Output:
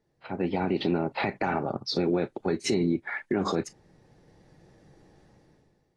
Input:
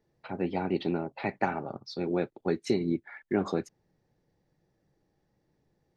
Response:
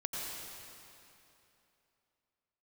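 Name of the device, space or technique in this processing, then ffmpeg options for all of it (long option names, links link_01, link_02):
low-bitrate web radio: -af "dynaudnorm=framelen=140:gausssize=9:maxgain=16dB,alimiter=limit=-16.5dB:level=0:latency=1:release=136" -ar 24000 -c:a aac -b:a 32k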